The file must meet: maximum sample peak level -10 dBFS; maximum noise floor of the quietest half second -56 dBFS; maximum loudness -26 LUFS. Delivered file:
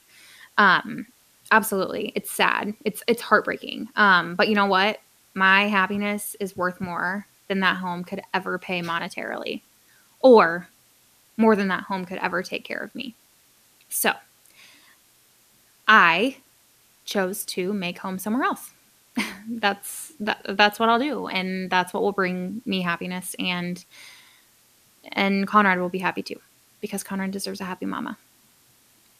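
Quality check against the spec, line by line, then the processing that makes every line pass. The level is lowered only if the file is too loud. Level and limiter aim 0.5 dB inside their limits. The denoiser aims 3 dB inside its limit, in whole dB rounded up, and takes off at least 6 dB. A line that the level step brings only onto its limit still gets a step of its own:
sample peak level -2.5 dBFS: fail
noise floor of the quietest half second -59 dBFS: OK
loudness -23.0 LUFS: fail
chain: gain -3.5 dB; limiter -10.5 dBFS

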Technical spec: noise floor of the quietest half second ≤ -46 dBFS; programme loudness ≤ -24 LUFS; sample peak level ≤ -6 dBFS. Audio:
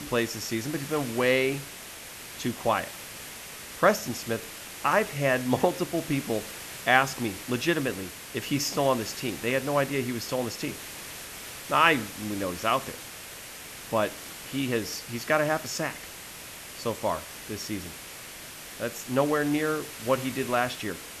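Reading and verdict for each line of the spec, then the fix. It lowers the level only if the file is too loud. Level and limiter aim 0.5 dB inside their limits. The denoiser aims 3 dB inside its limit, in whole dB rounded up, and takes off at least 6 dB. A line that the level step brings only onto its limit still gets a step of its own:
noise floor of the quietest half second -43 dBFS: fail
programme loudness -28.0 LUFS: OK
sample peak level -5.0 dBFS: fail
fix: denoiser 6 dB, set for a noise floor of -43 dBFS; limiter -6.5 dBFS

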